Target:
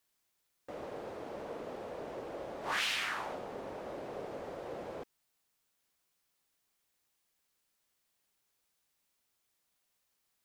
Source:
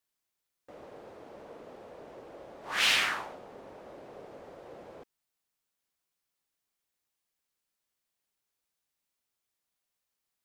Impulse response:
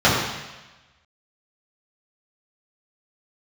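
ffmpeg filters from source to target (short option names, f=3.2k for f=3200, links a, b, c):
-af "acompressor=threshold=-37dB:ratio=8,volume=5.5dB"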